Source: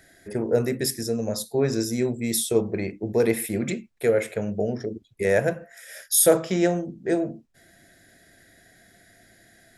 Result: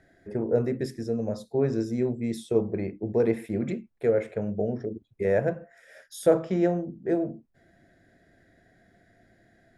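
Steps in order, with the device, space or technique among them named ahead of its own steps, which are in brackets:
through cloth (low-pass filter 8,400 Hz 12 dB per octave; high-shelf EQ 2,300 Hz −17.5 dB)
level −1.5 dB

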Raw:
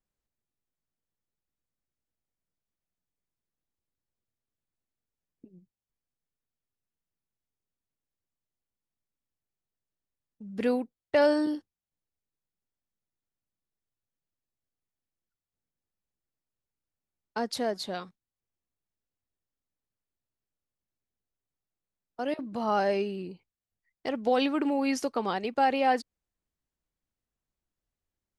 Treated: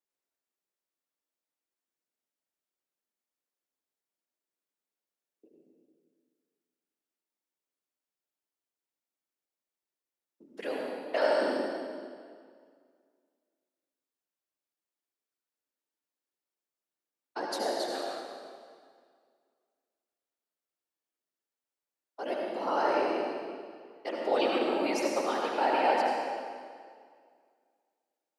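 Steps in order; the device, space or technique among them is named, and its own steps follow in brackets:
0:10.45–0:11.42: low-shelf EQ 500 Hz −7.5 dB
whispering ghost (random phases in short frames; high-pass filter 300 Hz 24 dB per octave; convolution reverb RT60 2.0 s, pre-delay 67 ms, DRR −1.5 dB)
level −3.5 dB

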